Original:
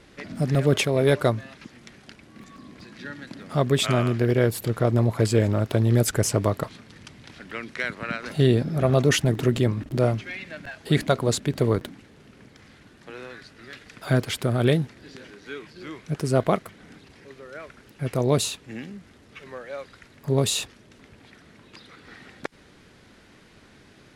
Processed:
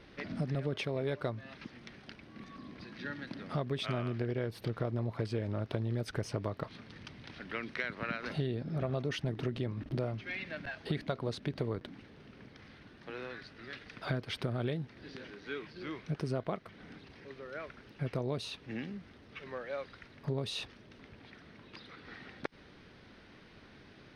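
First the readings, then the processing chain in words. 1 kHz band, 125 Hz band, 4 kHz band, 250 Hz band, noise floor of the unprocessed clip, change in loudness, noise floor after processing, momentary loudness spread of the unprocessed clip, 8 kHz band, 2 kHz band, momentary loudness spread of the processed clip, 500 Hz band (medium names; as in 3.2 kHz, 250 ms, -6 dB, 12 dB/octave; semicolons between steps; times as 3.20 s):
-12.0 dB, -13.0 dB, -12.5 dB, -13.0 dB, -53 dBFS, -15.0 dB, -57 dBFS, 19 LU, -24.0 dB, -9.5 dB, 19 LU, -13.5 dB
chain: compression 6:1, threshold -28 dBFS, peak gain reduction 14 dB; Savitzky-Golay filter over 15 samples; trim -3.5 dB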